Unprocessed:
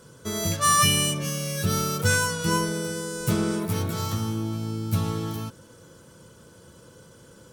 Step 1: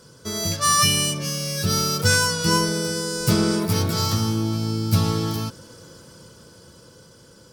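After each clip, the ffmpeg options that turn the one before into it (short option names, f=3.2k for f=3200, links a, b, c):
-af "equalizer=f=4.9k:w=3.4:g=11,dynaudnorm=f=340:g=11:m=6dB"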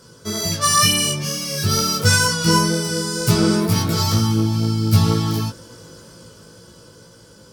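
-af "flanger=delay=17:depth=2.2:speed=2.1,volume=6dB"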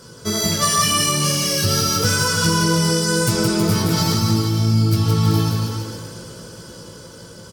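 -af "acompressor=threshold=-21dB:ratio=6,aecho=1:1:170|323|460.7|584.6|696.2:0.631|0.398|0.251|0.158|0.1,volume=4.5dB"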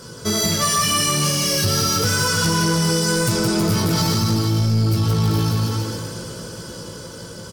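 -filter_complex "[0:a]asplit=2[a][b];[b]alimiter=limit=-13dB:level=0:latency=1:release=469,volume=3dB[c];[a][c]amix=inputs=2:normalize=0,asoftclip=type=tanh:threshold=-9dB,volume=-3.5dB"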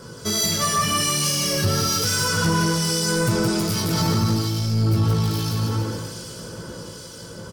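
-filter_complex "[0:a]acrossover=split=2200[a][b];[a]aeval=exprs='val(0)*(1-0.5/2+0.5/2*cos(2*PI*1.2*n/s))':c=same[c];[b]aeval=exprs='val(0)*(1-0.5/2-0.5/2*cos(2*PI*1.2*n/s))':c=same[d];[c][d]amix=inputs=2:normalize=0"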